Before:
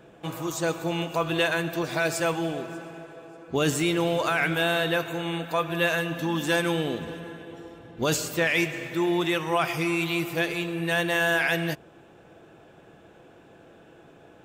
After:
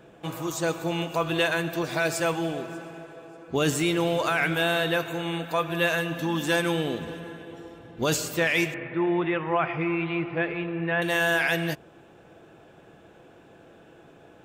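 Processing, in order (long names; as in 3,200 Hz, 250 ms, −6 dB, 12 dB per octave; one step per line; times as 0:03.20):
0:08.74–0:11.02: low-pass filter 2,400 Hz 24 dB per octave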